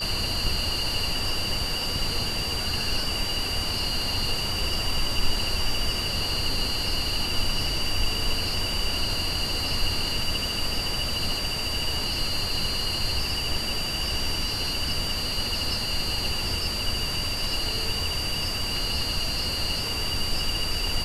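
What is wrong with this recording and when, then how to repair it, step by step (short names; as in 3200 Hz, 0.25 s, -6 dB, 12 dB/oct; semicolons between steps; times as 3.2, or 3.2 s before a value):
tone 4700 Hz -30 dBFS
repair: notch 4700 Hz, Q 30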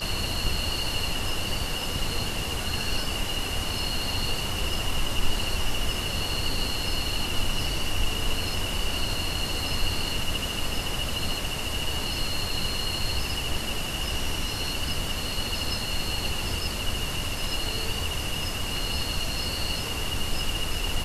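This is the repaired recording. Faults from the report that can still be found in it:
none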